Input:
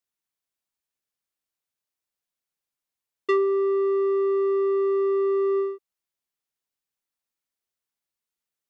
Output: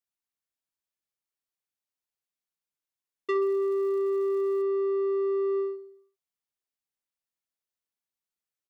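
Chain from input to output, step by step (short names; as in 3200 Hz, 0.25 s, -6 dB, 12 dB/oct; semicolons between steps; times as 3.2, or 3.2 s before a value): feedback echo 64 ms, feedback 57%, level -13 dB; 3.41–4.61 crackle 540/s -44 dBFS; gain -6 dB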